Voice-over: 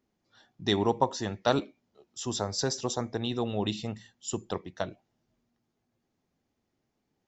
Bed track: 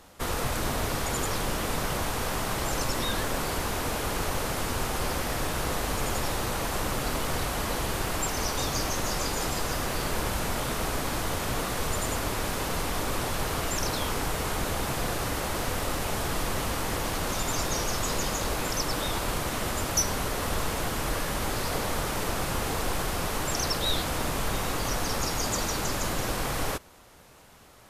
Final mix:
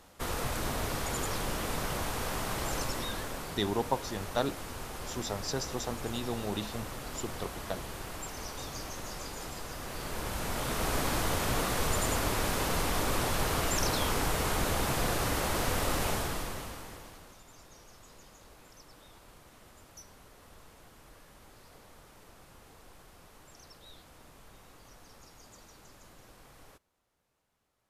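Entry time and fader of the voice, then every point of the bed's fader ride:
2.90 s, -5.0 dB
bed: 2.77 s -4.5 dB
3.59 s -11.5 dB
9.75 s -11.5 dB
10.98 s -0.5 dB
16.08 s -0.5 dB
17.42 s -26 dB

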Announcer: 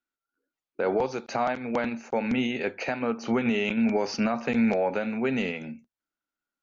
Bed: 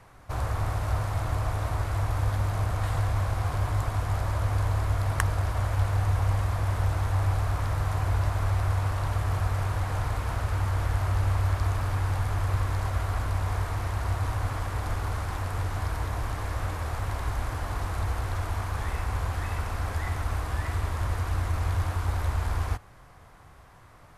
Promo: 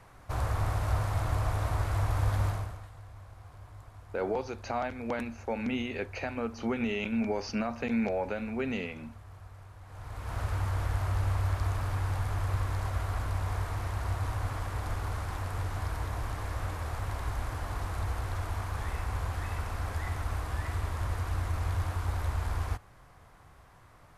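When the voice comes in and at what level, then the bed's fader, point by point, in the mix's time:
3.35 s, -6.0 dB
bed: 2.48 s -1.5 dB
2.91 s -22 dB
9.8 s -22 dB
10.4 s -4 dB

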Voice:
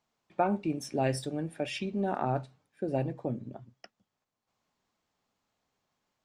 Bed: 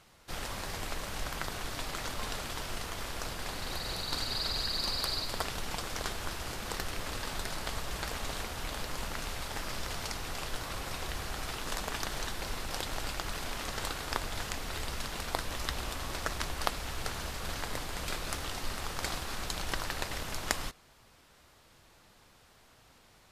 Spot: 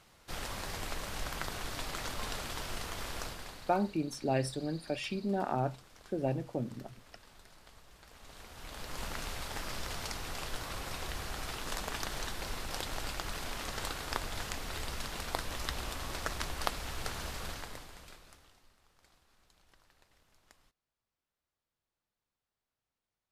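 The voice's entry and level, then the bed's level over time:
3.30 s, -2.0 dB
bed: 3.2 s -1.5 dB
4.01 s -21 dB
8.03 s -21 dB
9.04 s -2 dB
17.41 s -2 dB
18.77 s -31.5 dB

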